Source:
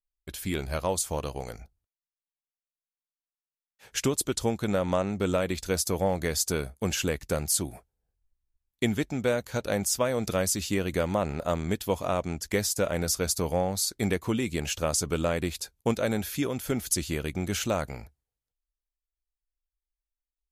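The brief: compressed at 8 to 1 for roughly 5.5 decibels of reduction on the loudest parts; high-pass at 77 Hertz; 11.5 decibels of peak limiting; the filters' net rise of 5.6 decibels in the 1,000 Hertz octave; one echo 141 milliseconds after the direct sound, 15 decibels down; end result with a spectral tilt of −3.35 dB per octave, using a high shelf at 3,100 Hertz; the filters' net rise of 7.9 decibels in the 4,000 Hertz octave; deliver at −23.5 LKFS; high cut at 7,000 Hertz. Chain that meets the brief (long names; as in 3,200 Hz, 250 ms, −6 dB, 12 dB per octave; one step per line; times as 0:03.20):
high-pass filter 77 Hz
low-pass filter 7,000 Hz
parametric band 1,000 Hz +6.5 dB
high-shelf EQ 3,100 Hz +5 dB
parametric band 4,000 Hz +6.5 dB
downward compressor 8 to 1, threshold −24 dBFS
brickwall limiter −22 dBFS
single-tap delay 141 ms −15 dB
level +10.5 dB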